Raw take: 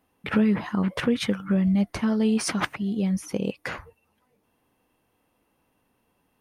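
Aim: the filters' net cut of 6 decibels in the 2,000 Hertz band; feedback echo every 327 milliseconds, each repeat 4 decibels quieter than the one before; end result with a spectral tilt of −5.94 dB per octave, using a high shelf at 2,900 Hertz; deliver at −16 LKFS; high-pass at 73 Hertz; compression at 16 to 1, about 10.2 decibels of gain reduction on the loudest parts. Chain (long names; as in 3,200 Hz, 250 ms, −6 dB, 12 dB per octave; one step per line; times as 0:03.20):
high-pass filter 73 Hz
parametric band 2,000 Hz −5.5 dB
high-shelf EQ 2,900 Hz −6 dB
downward compressor 16 to 1, threshold −27 dBFS
repeating echo 327 ms, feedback 63%, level −4 dB
level +15.5 dB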